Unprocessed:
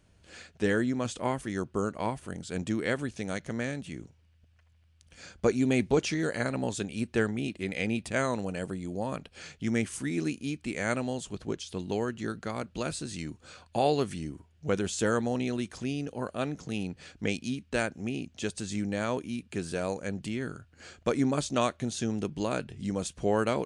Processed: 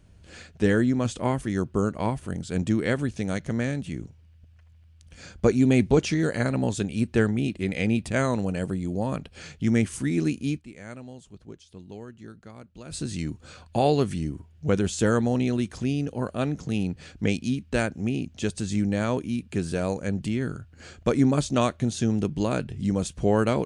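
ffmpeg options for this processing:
-filter_complex "[0:a]asplit=3[s0][s1][s2];[s0]atrim=end=10.79,asetpts=PTS-STARTPTS,afade=t=out:st=10.58:d=0.21:c=exp:silence=0.16788[s3];[s1]atrim=start=10.79:end=12.73,asetpts=PTS-STARTPTS,volume=0.168[s4];[s2]atrim=start=12.73,asetpts=PTS-STARTPTS,afade=t=in:d=0.21:c=exp:silence=0.16788[s5];[s3][s4][s5]concat=n=3:v=0:a=1,lowshelf=f=250:g=9,volume=1.26"

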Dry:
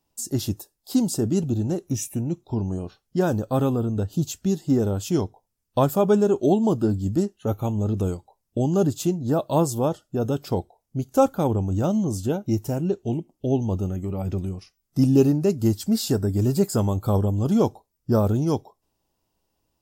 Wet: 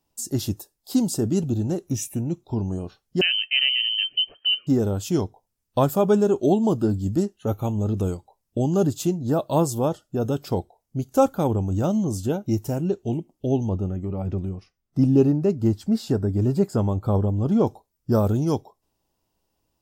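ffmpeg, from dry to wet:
-filter_complex "[0:a]asettb=1/sr,asplit=3[s0][s1][s2];[s0]atrim=end=3.214[s3];[s1]atrim=start=3.21:end=4.67,asetpts=PTS-STARTPTS,afade=t=in:d=0.004:c=qsin,afade=t=out:st=1.456:d=0.004:c=qsin,lowpass=f=2700:t=q:w=0.5098,lowpass=f=2700:t=q:w=0.6013,lowpass=f=2700:t=q:w=0.9,lowpass=f=2700:t=q:w=2.563,afreqshift=-3200[s4];[s2]atrim=start=4.666[s5];[s3][s4]acrossfade=d=0.004:c1=hsin:c2=qsin[s6];[s6][s5]acrossfade=d=0.004:c1=qsin:c2=hsin,asettb=1/sr,asplit=3[s7][s8][s9];[s7]atrim=end=13.694[s10];[s8]atrim=start=13.69:end=17.67,asetpts=PTS-STARTPTS,afade=t=in:d=0.004:c=qsin,afade=t=out:st=3.976:d=0.004:c=qsin,lowpass=f=1800:p=1[s11];[s9]atrim=start=17.666[s12];[s10][s11]acrossfade=d=0.004:c1=hsin:c2=qsin[s13];[s13][s12]acrossfade=d=0.004:c1=qsin:c2=hsin"

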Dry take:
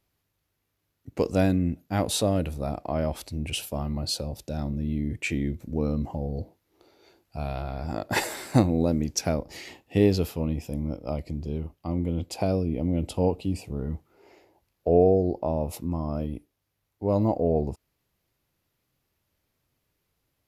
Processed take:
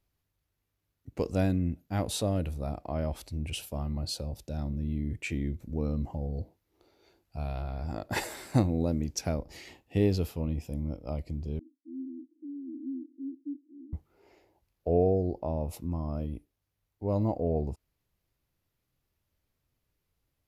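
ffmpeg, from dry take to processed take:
-filter_complex "[0:a]asettb=1/sr,asplit=3[s0][s1][s2];[s0]atrim=end=11.594[s3];[s1]atrim=start=11.59:end=13.93,asetpts=PTS-STARTPTS,afade=t=in:d=0.004:c=qsin,afade=t=out:st=2.336:d=0.004:c=qsin,asuperpass=centerf=290:order=8:qfactor=3.7[s4];[s2]atrim=start=13.926[s5];[s3][s4]acrossfade=d=0.004:c1=hsin:c2=qsin[s6];[s6][s5]acrossfade=d=0.004:c1=qsin:c2=hsin,lowshelf=f=79:g=11,volume=0.473"

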